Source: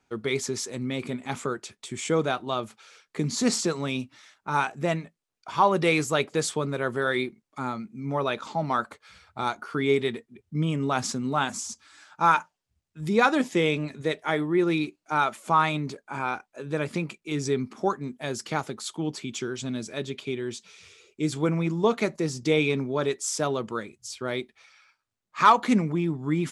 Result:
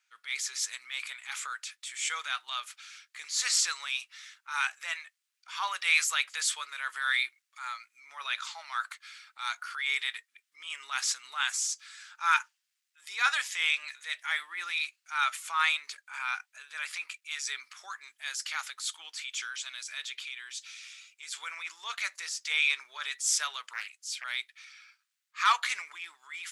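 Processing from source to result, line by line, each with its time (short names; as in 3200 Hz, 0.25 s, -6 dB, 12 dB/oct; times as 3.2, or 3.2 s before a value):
20.28–21.31 compressor 2:1, threshold -32 dBFS
23.73–24.24 Doppler distortion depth 0.45 ms
whole clip: HPF 1500 Hz 24 dB/oct; AGC gain up to 4.5 dB; transient shaper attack -7 dB, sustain +2 dB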